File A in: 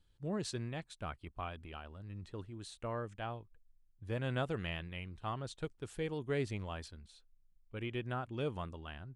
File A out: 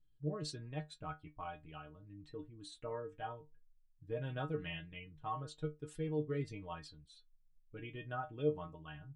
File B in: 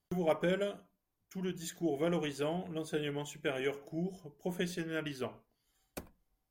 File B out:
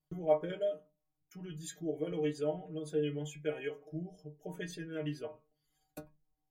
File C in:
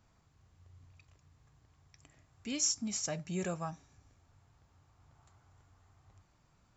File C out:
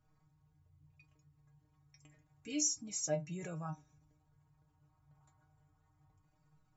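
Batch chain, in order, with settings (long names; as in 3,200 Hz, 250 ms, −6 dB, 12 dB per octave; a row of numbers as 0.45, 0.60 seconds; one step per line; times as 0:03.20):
spectral envelope exaggerated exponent 1.5
stiff-string resonator 150 Hz, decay 0.2 s, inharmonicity 0.002
level +7.5 dB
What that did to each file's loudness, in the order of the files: −2.0, −1.0, −2.0 LU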